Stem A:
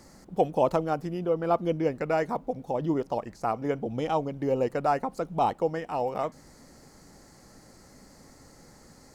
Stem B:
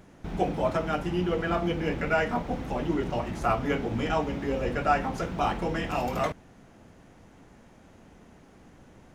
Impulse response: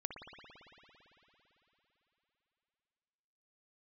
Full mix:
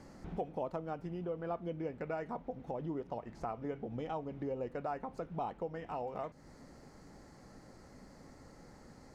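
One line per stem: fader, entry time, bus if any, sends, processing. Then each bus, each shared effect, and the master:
-2.0 dB, 0.00 s, no send, none
-5.0 dB, 0.00 s, no send, auto duck -11 dB, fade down 0.75 s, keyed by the first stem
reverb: none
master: low-pass 2.4 kHz 6 dB/octave; compression 2.5:1, threshold -41 dBFS, peak gain reduction 14 dB

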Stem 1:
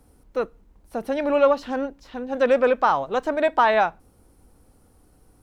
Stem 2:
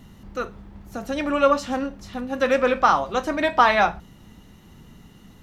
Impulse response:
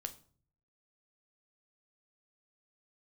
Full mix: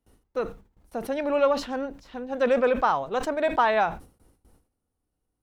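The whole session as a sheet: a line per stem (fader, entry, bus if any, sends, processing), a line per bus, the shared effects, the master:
-3.5 dB, 0.00 s, no send, none
-10.5 dB, 0.00 s, no send, touch-sensitive flanger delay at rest 3.1 ms, full sweep at -18 dBFS; auto duck -10 dB, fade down 0.90 s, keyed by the first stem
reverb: none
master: gate with hold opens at -47 dBFS; decay stretcher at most 140 dB/s

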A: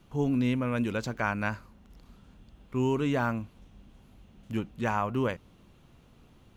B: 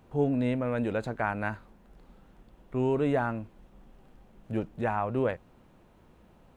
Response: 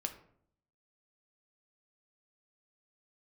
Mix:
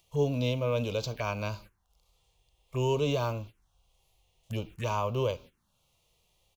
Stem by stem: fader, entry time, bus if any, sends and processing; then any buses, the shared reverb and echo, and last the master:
-6.0 dB, 0.00 s, send -8.5 dB, tilt shelf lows -9.5 dB, about 1.2 kHz; upward compressor, threshold -44 dBFS
-7.0 dB, 2 ms, no send, none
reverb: on, RT60 0.65 s, pre-delay 3 ms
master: gate -50 dBFS, range -17 dB; harmonic-percussive split harmonic +8 dB; touch-sensitive phaser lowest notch 250 Hz, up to 1.8 kHz, full sweep at -29.5 dBFS

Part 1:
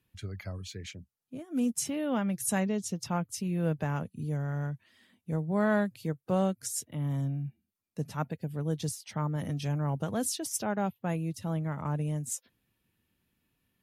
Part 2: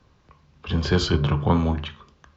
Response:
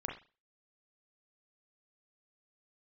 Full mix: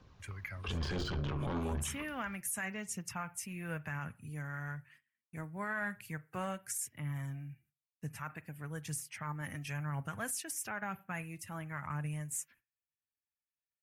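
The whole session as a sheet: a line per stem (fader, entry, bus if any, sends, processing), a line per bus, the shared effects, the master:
-7.0 dB, 0.05 s, send -15.5 dB, gate -57 dBFS, range -27 dB; short-mantissa float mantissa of 8-bit; FFT filter 120 Hz 0 dB, 170 Hz -5 dB, 500 Hz -9 dB, 1.7 kHz +11 dB, 2.5 kHz +10 dB, 3.7 kHz -7 dB, 8.3 kHz +7 dB
-4.0 dB, 0.00 s, no send, de-esser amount 80%; Chebyshev shaper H 4 -10 dB, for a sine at -7 dBFS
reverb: on, pre-delay 33 ms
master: phaser 1 Hz, delay 3.8 ms, feedback 28%; peak limiter -28 dBFS, peak gain reduction 18.5 dB

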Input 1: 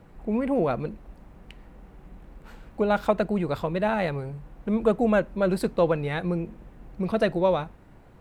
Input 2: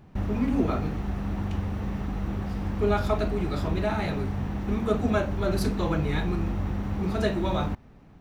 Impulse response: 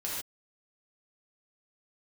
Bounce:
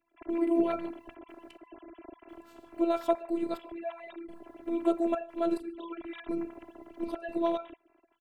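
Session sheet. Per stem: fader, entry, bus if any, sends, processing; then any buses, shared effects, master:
-1.0 dB, 0.00 s, send -24 dB, high-pass 170 Hz 12 dB/octave; trance gate "..xxxxxx.xx..." 105 bpm -24 dB
-3.5 dB, 4.9 ms, polarity flipped, no send, formants replaced by sine waves; tilt shelf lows -6 dB, about 1.4 kHz; level rider gain up to 11 dB; auto duck -13 dB, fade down 1.35 s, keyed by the first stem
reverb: on, pre-delay 3 ms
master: robot voice 336 Hz; peaking EQ 1.7 kHz -10 dB 1.7 oct

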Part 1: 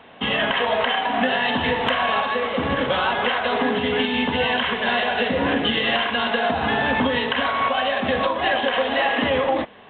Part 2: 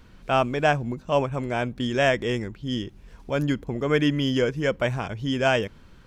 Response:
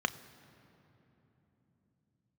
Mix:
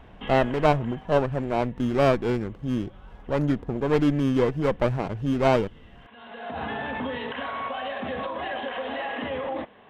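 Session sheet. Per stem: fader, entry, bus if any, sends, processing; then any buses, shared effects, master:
-5.5 dB, 0.00 s, no send, peak limiter -16.5 dBFS, peak gain reduction 7 dB; auto duck -24 dB, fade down 1.50 s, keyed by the second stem
+1.5 dB, 0.00 s, no send, sliding maximum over 17 samples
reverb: none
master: treble shelf 3.3 kHz -9.5 dB

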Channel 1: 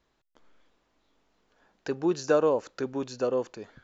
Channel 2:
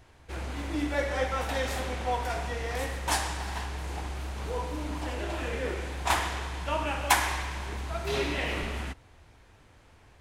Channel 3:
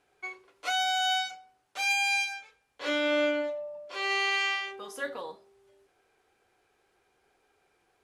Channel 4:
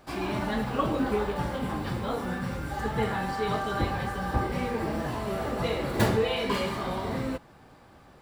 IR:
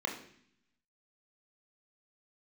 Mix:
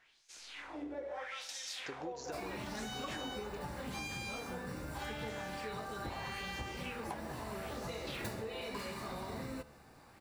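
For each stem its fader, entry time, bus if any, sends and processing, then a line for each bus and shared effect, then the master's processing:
-7.0 dB, 0.00 s, no send, compression, threshold -28 dBFS, peak gain reduction 10 dB
+1.5 dB, 0.00 s, no send, LFO band-pass sine 0.79 Hz 390–6200 Hz
-8.5 dB, 2.15 s, no send, none
-3.0 dB, 2.25 s, no send, band-stop 3.2 kHz, Q 5.7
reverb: none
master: treble shelf 3.2 kHz +8.5 dB; feedback comb 73 Hz, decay 0.96 s, mix 40%; compression, threshold -39 dBFS, peak gain reduction 14 dB

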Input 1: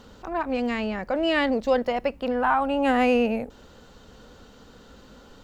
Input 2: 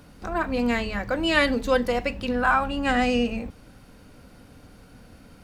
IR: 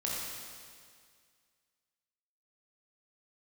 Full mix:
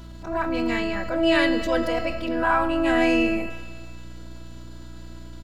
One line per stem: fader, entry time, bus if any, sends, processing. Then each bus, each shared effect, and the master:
+0.5 dB, 0.00 s, send -6 dB, robot voice 328 Hz
-6.0 dB, 0.3 ms, send -19 dB, none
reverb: on, RT60 2.0 s, pre-delay 18 ms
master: transient shaper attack -5 dB, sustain +3 dB; hum 60 Hz, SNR 17 dB

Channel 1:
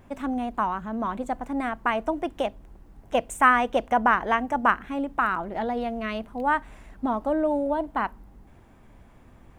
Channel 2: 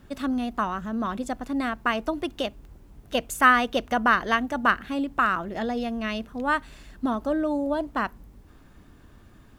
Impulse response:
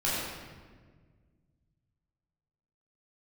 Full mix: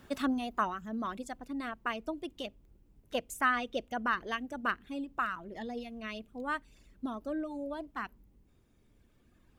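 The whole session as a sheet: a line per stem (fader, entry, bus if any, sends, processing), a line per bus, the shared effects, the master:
-14.5 dB, 0.00 s, no send, high-order bell 1.1 kHz -11.5 dB; wow and flutter 17 cents
+1.0 dB, 0.00 s, no send, reverb removal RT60 1.9 s; bass shelf 210 Hz -11.5 dB; auto duck -11 dB, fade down 1.75 s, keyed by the first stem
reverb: none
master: none

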